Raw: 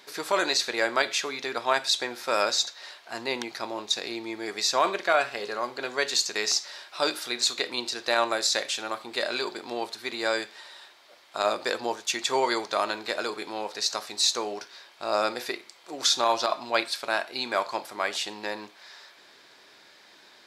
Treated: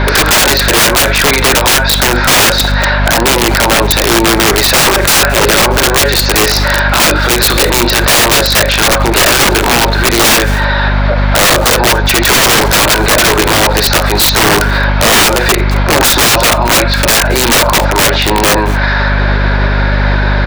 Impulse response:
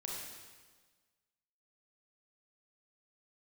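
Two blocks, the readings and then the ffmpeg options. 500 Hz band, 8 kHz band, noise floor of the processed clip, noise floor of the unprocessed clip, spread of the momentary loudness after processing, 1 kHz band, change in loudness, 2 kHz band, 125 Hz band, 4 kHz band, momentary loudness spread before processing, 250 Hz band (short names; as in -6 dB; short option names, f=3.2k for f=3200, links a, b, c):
+17.0 dB, +21.5 dB, -11 dBFS, -55 dBFS, 5 LU, +18.0 dB, +19.5 dB, +21.5 dB, +42.0 dB, +18.0 dB, 11 LU, +23.5 dB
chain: -filter_complex "[0:a]highpass=140,equalizer=f=140:t=q:w=4:g=-9,equalizer=f=380:t=q:w=4:g=4,equalizer=f=570:t=q:w=4:g=9,equalizer=f=910:t=q:w=4:g=6,equalizer=f=1.5k:t=q:w=4:g=9,equalizer=f=3.1k:t=q:w=4:g=-8,lowpass=f=3.6k:w=0.5412,lowpass=f=3.6k:w=1.3066,bandreject=f=50:t=h:w=6,bandreject=f=100:t=h:w=6,bandreject=f=150:t=h:w=6,bandreject=f=200:t=h:w=6,bandreject=f=250:t=h:w=6,bandreject=f=300:t=h:w=6,acompressor=threshold=-38dB:ratio=2,aeval=exprs='val(0)+0.00562*(sin(2*PI*50*n/s)+sin(2*PI*2*50*n/s)/2+sin(2*PI*3*50*n/s)/3+sin(2*PI*4*50*n/s)/4+sin(2*PI*5*50*n/s)/5)':c=same,aeval=exprs='(mod(37.6*val(0)+1,2)-1)/37.6':c=same,asplit=2[a][b];[b]adelay=221.6,volume=-21dB,highshelf=f=4k:g=-4.99[c];[a][c]amix=inputs=2:normalize=0,acontrast=75,alimiter=level_in=30.5dB:limit=-1dB:release=50:level=0:latency=1,volume=-1dB"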